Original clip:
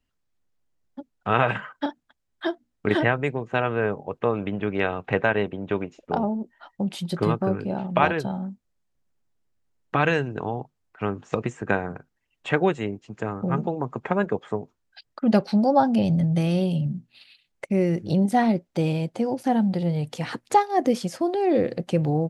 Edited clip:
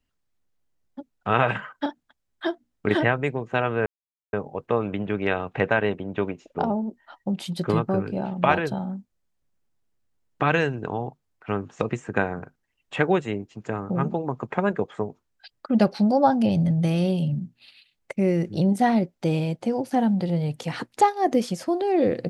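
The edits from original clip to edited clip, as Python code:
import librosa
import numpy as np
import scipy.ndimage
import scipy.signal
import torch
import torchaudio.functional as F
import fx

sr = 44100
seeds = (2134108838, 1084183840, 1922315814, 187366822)

y = fx.edit(x, sr, fx.insert_silence(at_s=3.86, length_s=0.47), tone=tone)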